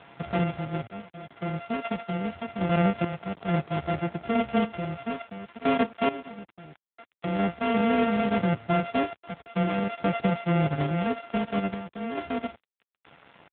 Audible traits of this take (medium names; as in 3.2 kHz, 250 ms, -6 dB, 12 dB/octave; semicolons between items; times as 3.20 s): a buzz of ramps at a fixed pitch in blocks of 64 samples; random-step tremolo 2.3 Hz, depth 90%; a quantiser's noise floor 8-bit, dither none; AMR-NB